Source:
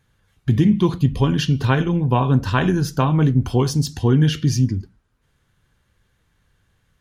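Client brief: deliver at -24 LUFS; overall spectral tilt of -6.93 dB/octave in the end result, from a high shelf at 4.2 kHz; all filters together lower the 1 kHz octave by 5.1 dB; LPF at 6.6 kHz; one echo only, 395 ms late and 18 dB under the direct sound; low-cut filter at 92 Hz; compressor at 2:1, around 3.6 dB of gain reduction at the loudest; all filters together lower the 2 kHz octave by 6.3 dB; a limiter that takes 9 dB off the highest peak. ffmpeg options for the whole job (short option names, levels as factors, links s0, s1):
-af "highpass=92,lowpass=6600,equalizer=f=1000:t=o:g=-4.5,equalizer=f=2000:t=o:g=-8.5,highshelf=f=4200:g=5.5,acompressor=threshold=0.126:ratio=2,alimiter=limit=0.141:level=0:latency=1,aecho=1:1:395:0.126,volume=1.26"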